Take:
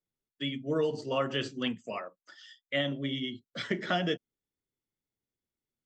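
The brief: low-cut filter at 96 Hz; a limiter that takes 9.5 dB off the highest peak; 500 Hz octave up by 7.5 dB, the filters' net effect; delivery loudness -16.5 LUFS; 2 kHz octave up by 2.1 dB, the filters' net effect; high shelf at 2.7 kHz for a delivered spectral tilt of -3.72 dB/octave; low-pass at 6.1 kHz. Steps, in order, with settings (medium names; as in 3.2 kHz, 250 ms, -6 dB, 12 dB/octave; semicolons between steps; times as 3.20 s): high-pass 96 Hz; low-pass 6.1 kHz; peaking EQ 500 Hz +8.5 dB; peaking EQ 2 kHz +3.5 dB; treble shelf 2.7 kHz -3.5 dB; trim +16 dB; peak limiter -5 dBFS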